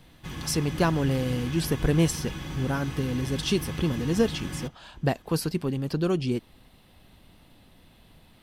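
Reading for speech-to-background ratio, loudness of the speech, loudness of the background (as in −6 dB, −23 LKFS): 9.0 dB, −27.5 LKFS, −36.5 LKFS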